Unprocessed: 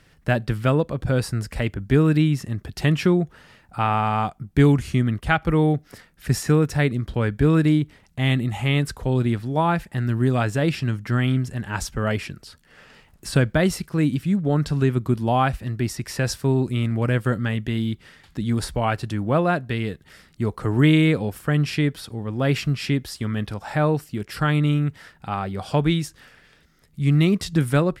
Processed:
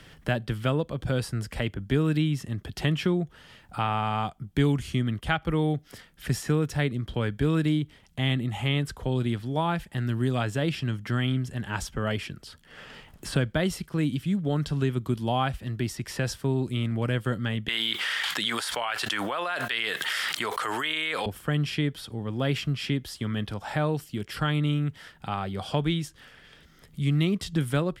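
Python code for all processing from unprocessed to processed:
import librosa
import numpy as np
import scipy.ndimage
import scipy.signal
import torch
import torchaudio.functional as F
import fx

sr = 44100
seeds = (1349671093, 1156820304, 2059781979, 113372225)

y = fx.chain(x, sr, fx.highpass(hz=1200.0, slope=12),
    fx.env_flatten(amount_pct=100), at=(17.68, 21.26))
y = fx.peak_eq(y, sr, hz=3200.0, db=8.5, octaves=0.21)
y = fx.band_squash(y, sr, depth_pct=40)
y = F.gain(torch.from_numpy(y), -6.0).numpy()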